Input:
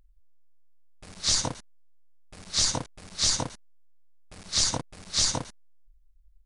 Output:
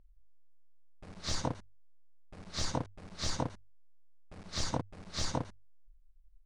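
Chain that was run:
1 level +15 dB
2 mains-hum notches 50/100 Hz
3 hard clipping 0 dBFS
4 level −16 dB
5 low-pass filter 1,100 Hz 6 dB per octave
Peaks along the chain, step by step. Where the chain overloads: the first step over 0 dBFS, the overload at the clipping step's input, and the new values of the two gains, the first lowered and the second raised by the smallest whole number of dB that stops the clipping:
+5.0, +5.0, 0.0, −16.0, −18.5 dBFS
step 1, 5.0 dB
step 1 +10 dB, step 4 −11 dB

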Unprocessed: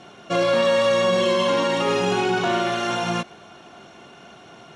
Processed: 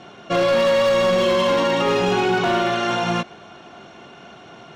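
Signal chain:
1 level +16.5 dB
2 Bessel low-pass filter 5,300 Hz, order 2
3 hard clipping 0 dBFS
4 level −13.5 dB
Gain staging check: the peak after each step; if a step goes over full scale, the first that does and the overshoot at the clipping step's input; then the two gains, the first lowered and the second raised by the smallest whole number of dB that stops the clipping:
+7.5, +7.5, 0.0, −13.5 dBFS
step 1, 7.5 dB
step 1 +8.5 dB, step 4 −5.5 dB

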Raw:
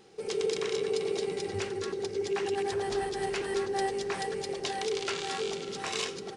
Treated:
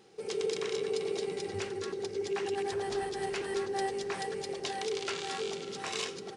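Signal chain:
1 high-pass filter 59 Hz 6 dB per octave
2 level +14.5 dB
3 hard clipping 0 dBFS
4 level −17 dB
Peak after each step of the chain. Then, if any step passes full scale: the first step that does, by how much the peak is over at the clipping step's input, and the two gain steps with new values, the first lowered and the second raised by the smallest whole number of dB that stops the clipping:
−17.5, −3.0, −3.0, −20.0 dBFS
no step passes full scale

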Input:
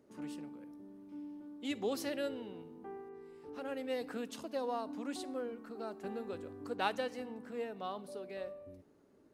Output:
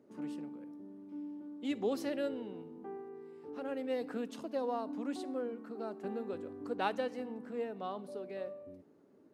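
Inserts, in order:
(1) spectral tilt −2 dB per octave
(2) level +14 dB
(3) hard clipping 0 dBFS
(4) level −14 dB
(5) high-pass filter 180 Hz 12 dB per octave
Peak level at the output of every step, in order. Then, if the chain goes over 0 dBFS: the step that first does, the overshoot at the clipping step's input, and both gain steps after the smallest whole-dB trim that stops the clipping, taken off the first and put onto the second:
−19.5, −5.5, −5.5, −19.5, −19.5 dBFS
no step passes full scale

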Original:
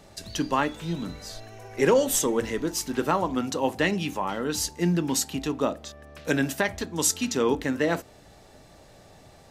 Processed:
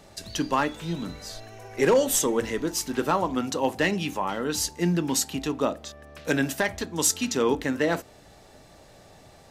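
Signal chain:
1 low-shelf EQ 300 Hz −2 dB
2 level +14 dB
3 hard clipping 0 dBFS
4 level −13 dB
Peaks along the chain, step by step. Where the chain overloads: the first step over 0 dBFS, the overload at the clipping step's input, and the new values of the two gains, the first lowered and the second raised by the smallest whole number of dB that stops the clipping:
−9.5, +4.5, 0.0, −13.0 dBFS
step 2, 4.5 dB
step 2 +9 dB, step 4 −8 dB

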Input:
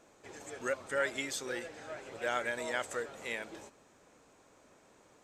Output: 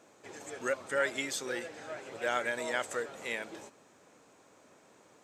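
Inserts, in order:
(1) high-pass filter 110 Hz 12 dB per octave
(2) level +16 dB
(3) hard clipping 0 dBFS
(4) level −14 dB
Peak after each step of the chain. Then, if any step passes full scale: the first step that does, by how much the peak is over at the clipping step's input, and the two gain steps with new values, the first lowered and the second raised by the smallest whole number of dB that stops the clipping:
−18.5, −2.5, −2.5, −16.5 dBFS
no step passes full scale

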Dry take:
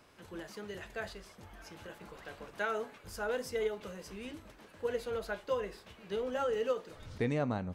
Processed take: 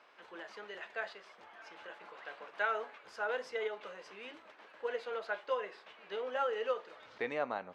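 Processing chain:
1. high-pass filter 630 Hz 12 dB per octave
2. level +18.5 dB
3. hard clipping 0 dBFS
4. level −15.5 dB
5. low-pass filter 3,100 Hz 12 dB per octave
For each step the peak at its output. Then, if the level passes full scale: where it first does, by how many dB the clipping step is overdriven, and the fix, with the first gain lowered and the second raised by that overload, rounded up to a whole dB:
−23.0, −4.5, −4.5, −20.0, −20.5 dBFS
no step passes full scale

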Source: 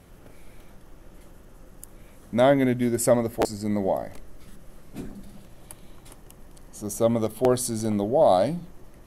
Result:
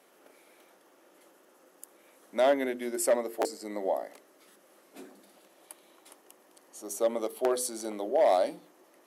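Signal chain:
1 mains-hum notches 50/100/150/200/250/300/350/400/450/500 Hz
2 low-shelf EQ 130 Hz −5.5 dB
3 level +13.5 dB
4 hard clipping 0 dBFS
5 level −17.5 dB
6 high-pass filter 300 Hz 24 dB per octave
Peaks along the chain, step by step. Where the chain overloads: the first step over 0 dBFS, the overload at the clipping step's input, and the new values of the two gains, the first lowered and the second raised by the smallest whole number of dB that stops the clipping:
−8.0, −8.0, +5.5, 0.0, −17.5, −12.0 dBFS
step 3, 5.5 dB
step 3 +7.5 dB, step 5 −11.5 dB

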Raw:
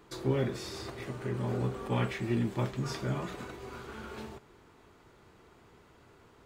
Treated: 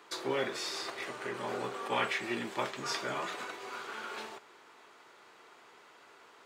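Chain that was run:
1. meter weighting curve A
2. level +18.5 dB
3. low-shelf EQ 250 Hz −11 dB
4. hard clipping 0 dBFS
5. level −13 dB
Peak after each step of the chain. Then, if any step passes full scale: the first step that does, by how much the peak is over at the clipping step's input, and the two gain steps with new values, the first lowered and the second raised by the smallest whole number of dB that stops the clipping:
−21.0, −2.5, −4.0, −4.0, −17.0 dBFS
no step passes full scale

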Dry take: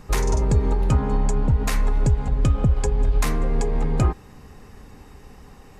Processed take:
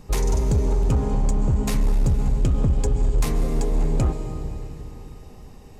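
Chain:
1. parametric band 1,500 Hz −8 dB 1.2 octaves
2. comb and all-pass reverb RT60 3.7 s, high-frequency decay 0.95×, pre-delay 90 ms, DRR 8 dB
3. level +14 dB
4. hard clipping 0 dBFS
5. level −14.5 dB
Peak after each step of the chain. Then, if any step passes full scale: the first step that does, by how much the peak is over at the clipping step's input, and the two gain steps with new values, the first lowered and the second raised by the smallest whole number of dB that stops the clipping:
−10.0, −7.5, +6.5, 0.0, −14.5 dBFS
step 3, 6.5 dB
step 3 +7 dB, step 5 −7.5 dB

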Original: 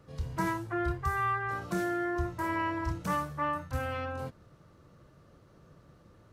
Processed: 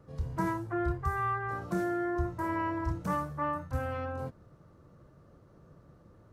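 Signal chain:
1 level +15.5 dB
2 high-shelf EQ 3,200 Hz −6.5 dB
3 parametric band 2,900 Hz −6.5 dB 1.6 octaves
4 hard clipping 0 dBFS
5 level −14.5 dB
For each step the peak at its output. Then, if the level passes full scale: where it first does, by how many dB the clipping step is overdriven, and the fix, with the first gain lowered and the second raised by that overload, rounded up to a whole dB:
−2.5, −3.5, −4.5, −4.5, −19.0 dBFS
no step passes full scale

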